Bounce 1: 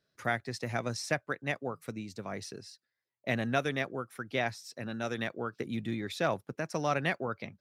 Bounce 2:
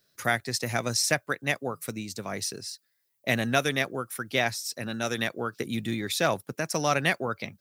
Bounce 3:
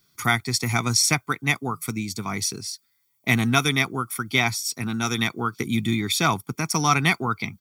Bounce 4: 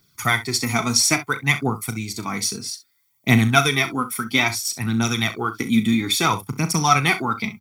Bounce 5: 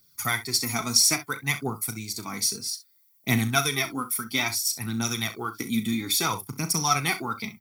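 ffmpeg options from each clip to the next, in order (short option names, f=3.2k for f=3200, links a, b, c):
-af "aemphasis=mode=production:type=75kf,volume=4dB"
-af "aecho=1:1:0.9:0.9,volume=3.5dB"
-af "aphaser=in_gain=1:out_gain=1:delay=4.8:decay=0.5:speed=0.6:type=triangular,aecho=1:1:36|65:0.251|0.178,volume=1dB"
-af "aexciter=amount=2.6:drive=3.5:freq=4.2k,flanger=delay=1.7:depth=2.2:regen=80:speed=1.9:shape=triangular,volume=-3dB"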